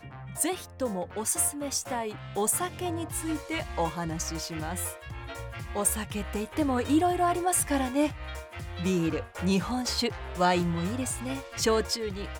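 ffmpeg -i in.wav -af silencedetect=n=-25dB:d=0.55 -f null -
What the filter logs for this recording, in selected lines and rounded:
silence_start: 4.88
silence_end: 5.76 | silence_duration: 0.88
silence_start: 8.07
silence_end: 8.80 | silence_duration: 0.73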